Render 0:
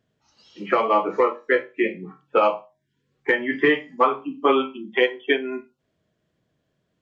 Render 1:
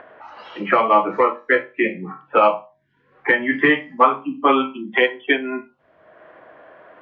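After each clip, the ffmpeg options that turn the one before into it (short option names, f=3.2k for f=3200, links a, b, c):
-filter_complex "[0:a]acrossover=split=230|400|1900[a][b][c][d];[c]acompressor=mode=upward:threshold=-24dB:ratio=2.5[e];[a][b][e][d]amix=inputs=4:normalize=0,lowpass=3k,equalizer=f=420:w=2.6:g=-7.5,volume=5.5dB"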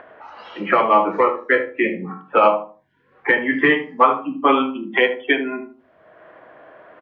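-filter_complex "[0:a]asplit=2[a][b];[b]adelay=76,lowpass=f=880:p=1,volume=-7dB,asplit=2[c][d];[d]adelay=76,lowpass=f=880:p=1,volume=0.32,asplit=2[e][f];[f]adelay=76,lowpass=f=880:p=1,volume=0.32,asplit=2[g][h];[h]adelay=76,lowpass=f=880:p=1,volume=0.32[i];[a][c][e][g][i]amix=inputs=5:normalize=0"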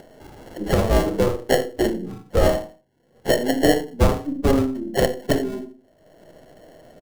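-filter_complex "[0:a]aeval=exprs='if(lt(val(0),0),0.708*val(0),val(0))':c=same,acrossover=split=760[a][b];[a]asplit=2[c][d];[d]adelay=41,volume=-6dB[e];[c][e]amix=inputs=2:normalize=0[f];[b]acrusher=samples=36:mix=1:aa=0.000001[g];[f][g]amix=inputs=2:normalize=0"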